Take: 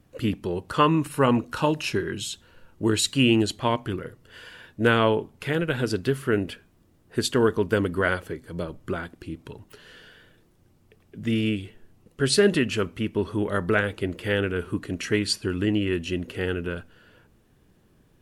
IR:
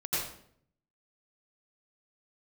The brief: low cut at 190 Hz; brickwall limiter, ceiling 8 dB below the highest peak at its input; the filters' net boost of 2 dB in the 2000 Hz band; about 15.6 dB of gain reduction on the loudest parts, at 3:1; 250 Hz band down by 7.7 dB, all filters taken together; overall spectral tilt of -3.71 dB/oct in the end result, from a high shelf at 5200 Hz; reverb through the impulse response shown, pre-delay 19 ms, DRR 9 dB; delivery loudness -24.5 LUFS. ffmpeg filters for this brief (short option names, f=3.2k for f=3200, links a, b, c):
-filter_complex "[0:a]highpass=190,equalizer=f=250:t=o:g=-9,equalizer=f=2k:t=o:g=3.5,highshelf=f=5.2k:g=-4,acompressor=threshold=-38dB:ratio=3,alimiter=level_in=4dB:limit=-24dB:level=0:latency=1,volume=-4dB,asplit=2[a][b];[1:a]atrim=start_sample=2205,adelay=19[c];[b][c]afir=irnorm=-1:irlink=0,volume=-16dB[d];[a][d]amix=inputs=2:normalize=0,volume=16.5dB"